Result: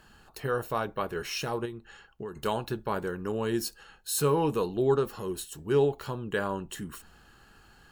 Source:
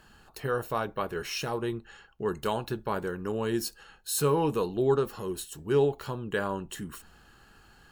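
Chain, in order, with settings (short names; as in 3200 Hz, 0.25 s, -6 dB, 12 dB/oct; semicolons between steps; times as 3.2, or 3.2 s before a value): 1.65–2.36 compressor 6:1, threshold -36 dBFS, peak gain reduction 11 dB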